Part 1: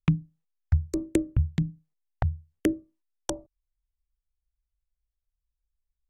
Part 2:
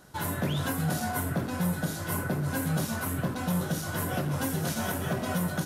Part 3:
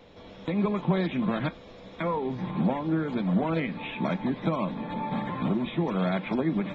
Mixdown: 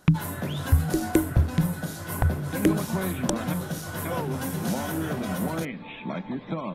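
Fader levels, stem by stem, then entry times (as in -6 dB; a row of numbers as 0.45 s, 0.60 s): +3.0 dB, -1.5 dB, -4.0 dB; 0.00 s, 0.00 s, 2.05 s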